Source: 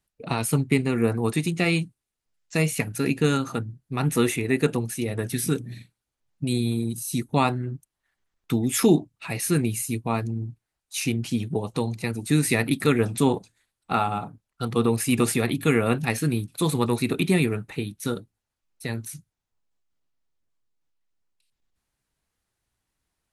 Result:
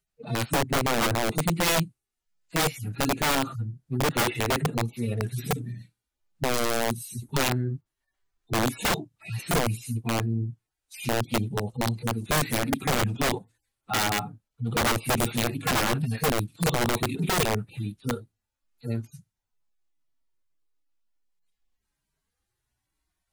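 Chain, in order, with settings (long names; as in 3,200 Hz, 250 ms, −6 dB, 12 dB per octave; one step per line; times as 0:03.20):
harmonic-percussive split with one part muted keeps harmonic
wrap-around overflow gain 20 dB
level +2 dB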